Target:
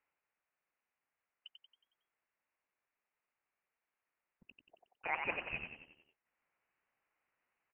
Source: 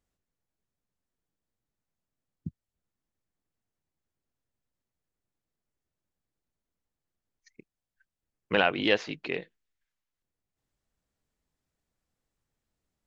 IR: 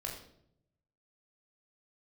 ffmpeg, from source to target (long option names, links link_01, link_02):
-filter_complex "[0:a]highpass=770,areverse,acompressor=threshold=-39dB:ratio=10,areverse,asetrate=74529,aresample=44100,asplit=7[link_01][link_02][link_03][link_04][link_05][link_06][link_07];[link_02]adelay=91,afreqshift=-41,volume=-5.5dB[link_08];[link_03]adelay=182,afreqshift=-82,volume=-11.7dB[link_09];[link_04]adelay=273,afreqshift=-123,volume=-17.9dB[link_10];[link_05]adelay=364,afreqshift=-164,volume=-24.1dB[link_11];[link_06]adelay=455,afreqshift=-205,volume=-30.3dB[link_12];[link_07]adelay=546,afreqshift=-246,volume=-36.5dB[link_13];[link_01][link_08][link_09][link_10][link_11][link_12][link_13]amix=inputs=7:normalize=0,lowpass=frequency=2800:width_type=q:width=0.5098,lowpass=frequency=2800:width_type=q:width=0.6013,lowpass=frequency=2800:width_type=q:width=0.9,lowpass=frequency=2800:width_type=q:width=2.563,afreqshift=-3300,volume=8dB"